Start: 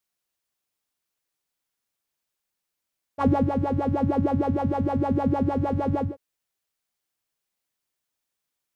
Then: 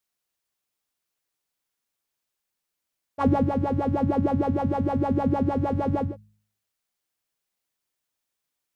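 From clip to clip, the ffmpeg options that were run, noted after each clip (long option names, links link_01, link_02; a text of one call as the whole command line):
ffmpeg -i in.wav -af "bandreject=frequency=52.45:width_type=h:width=4,bandreject=frequency=104.9:width_type=h:width=4,bandreject=frequency=157.35:width_type=h:width=4,bandreject=frequency=209.8:width_type=h:width=4" out.wav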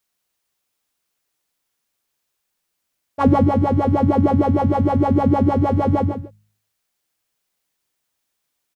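ffmpeg -i in.wav -af "aecho=1:1:141:0.376,volume=6.5dB" out.wav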